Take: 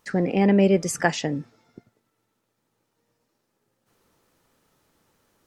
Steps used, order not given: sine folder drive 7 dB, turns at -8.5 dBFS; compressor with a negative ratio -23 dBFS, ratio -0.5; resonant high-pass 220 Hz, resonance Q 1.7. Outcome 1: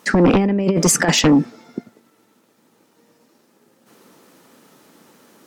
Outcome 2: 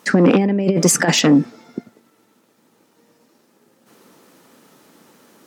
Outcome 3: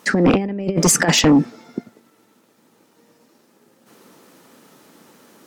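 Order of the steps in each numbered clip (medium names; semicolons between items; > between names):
compressor with a negative ratio > resonant high-pass > sine folder; compressor with a negative ratio > sine folder > resonant high-pass; resonant high-pass > compressor with a negative ratio > sine folder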